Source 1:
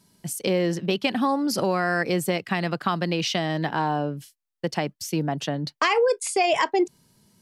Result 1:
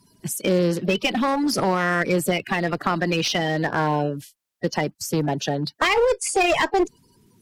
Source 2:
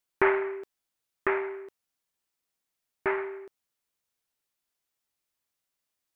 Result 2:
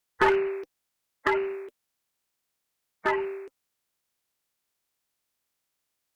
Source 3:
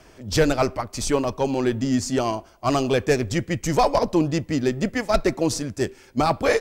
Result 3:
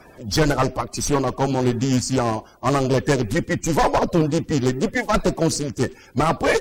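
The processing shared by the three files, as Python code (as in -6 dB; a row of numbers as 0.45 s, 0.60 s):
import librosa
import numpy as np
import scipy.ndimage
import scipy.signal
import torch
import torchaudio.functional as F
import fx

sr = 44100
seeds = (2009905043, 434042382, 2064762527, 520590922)

y = fx.spec_quant(x, sr, step_db=30)
y = fx.clip_asym(y, sr, top_db=-22.5, bottom_db=-12.0)
y = y * librosa.db_to_amplitude(4.0)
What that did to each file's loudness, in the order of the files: +2.5 LU, +2.0 LU, +2.0 LU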